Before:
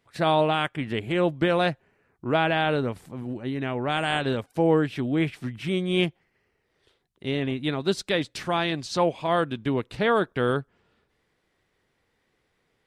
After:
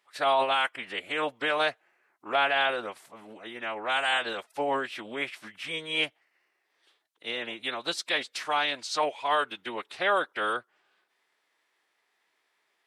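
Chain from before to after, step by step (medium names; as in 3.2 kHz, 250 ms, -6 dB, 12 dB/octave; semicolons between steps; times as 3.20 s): high-pass 750 Hz 12 dB/octave; formant-preserving pitch shift -2.5 st; trim +1.5 dB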